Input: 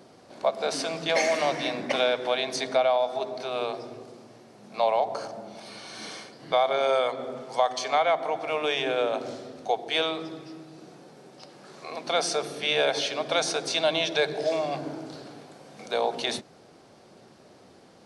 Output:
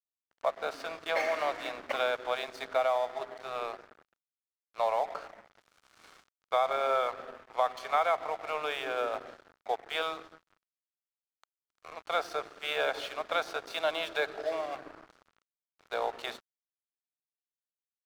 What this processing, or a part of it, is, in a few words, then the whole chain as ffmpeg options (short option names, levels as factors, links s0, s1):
pocket radio on a weak battery: -af "highpass=380,lowpass=3200,aeval=exprs='sgn(val(0))*max(abs(val(0))-0.01,0)':c=same,equalizer=f=1300:t=o:w=0.55:g=8,volume=0.562"